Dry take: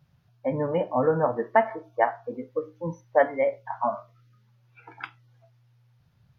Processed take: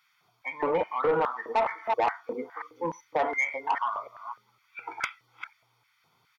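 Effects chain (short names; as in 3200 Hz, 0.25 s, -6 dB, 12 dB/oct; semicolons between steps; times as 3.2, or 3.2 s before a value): reverse delay 0.291 s, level -13 dB; limiter -17.5 dBFS, peak gain reduction 10.5 dB; comb 0.9 ms, depth 80%; LFO high-pass square 2.4 Hz 500–1700 Hz; soft clip -22.5 dBFS, distortion -12 dB; gain +4.5 dB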